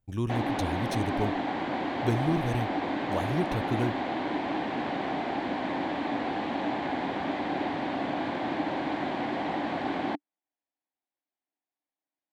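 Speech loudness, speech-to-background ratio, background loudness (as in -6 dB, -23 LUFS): -32.5 LUFS, -1.0 dB, -31.5 LUFS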